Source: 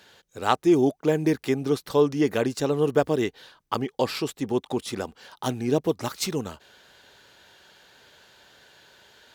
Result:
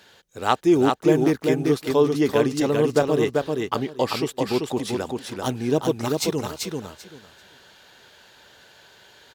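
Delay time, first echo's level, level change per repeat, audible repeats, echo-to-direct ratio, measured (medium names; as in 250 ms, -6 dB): 389 ms, -3.5 dB, -15.0 dB, 3, -3.5 dB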